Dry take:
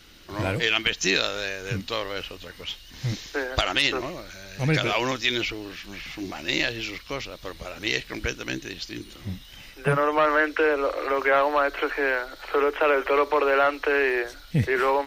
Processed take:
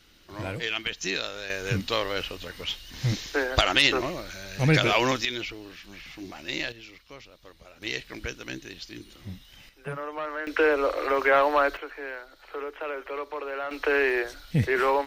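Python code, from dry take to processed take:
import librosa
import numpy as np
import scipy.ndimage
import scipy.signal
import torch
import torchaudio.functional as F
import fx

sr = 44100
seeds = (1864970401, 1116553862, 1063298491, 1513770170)

y = fx.gain(x, sr, db=fx.steps((0.0, -7.0), (1.5, 2.0), (5.25, -6.5), (6.72, -14.0), (7.82, -6.0), (9.69, -12.5), (10.47, 0.0), (11.77, -12.5), (13.71, -1.0)))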